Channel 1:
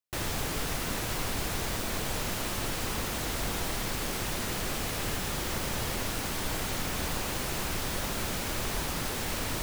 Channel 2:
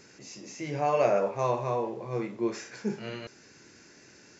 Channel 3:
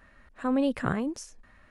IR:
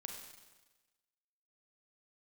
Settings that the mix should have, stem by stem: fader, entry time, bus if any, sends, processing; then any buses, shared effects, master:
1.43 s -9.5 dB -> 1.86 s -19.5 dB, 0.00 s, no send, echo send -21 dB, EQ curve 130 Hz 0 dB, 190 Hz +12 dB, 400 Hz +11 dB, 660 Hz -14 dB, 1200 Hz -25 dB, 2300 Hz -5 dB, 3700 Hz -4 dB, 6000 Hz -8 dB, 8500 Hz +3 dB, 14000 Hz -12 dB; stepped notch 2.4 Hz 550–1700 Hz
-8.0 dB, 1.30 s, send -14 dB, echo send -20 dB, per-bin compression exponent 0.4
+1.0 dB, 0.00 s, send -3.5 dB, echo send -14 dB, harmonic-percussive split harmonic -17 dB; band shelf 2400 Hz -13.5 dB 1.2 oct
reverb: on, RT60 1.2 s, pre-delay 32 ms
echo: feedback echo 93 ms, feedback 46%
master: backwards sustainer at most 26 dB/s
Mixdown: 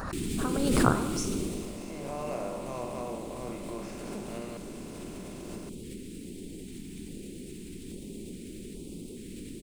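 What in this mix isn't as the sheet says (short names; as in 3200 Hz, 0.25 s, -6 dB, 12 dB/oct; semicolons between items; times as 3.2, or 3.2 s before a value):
stem 1 -9.5 dB -> -3.5 dB; stem 2 -8.0 dB -> -17.5 dB; reverb return +9.0 dB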